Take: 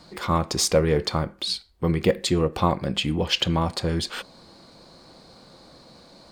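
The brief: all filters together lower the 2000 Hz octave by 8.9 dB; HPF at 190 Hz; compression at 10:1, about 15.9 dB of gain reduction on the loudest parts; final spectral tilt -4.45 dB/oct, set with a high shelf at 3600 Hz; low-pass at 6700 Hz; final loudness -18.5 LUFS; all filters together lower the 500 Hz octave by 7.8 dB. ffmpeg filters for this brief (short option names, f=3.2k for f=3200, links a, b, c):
-af "highpass=190,lowpass=6.7k,equalizer=f=500:t=o:g=-8.5,equalizer=f=2k:t=o:g=-9,highshelf=f=3.6k:g=-8,acompressor=threshold=-37dB:ratio=10,volume=23.5dB"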